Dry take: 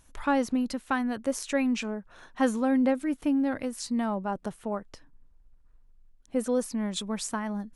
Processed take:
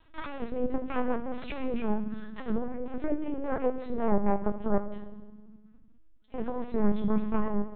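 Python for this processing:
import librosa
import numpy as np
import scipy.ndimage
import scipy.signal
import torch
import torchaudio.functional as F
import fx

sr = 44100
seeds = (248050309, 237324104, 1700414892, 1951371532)

p1 = fx.cheby_harmonics(x, sr, harmonics=(3, 4, 6, 8), levels_db=(-30, -8, -29, -37), full_scale_db=-12.0)
p2 = fx.hum_notches(p1, sr, base_hz=50, count=3)
p3 = fx.over_compress(p2, sr, threshold_db=-27.0, ratio=-0.5)
p4 = fx.env_lowpass_down(p3, sr, base_hz=1200.0, full_db=-25.5)
p5 = fx.vibrato(p4, sr, rate_hz=6.7, depth_cents=17.0)
p6 = p5 + fx.room_early_taps(p5, sr, ms=(20, 74), db=(-9.5, -17.0), dry=0)
p7 = fx.rev_fdn(p6, sr, rt60_s=1.3, lf_ratio=1.55, hf_ratio=0.8, size_ms=29.0, drr_db=7.5)
y = fx.lpc_vocoder(p7, sr, seeds[0], excitation='pitch_kept', order=10)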